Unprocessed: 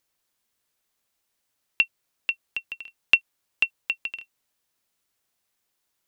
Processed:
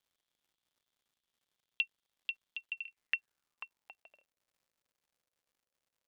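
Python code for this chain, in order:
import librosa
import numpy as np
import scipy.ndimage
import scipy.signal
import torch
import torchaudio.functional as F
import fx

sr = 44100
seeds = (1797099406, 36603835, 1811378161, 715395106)

y = fx.filter_sweep_bandpass(x, sr, from_hz=3400.0, to_hz=530.0, start_s=2.59, end_s=4.25, q=7.0)
y = fx.dmg_crackle(y, sr, seeds[0], per_s=210.0, level_db=-66.0)
y = y * librosa.db_to_amplitude(-1.0)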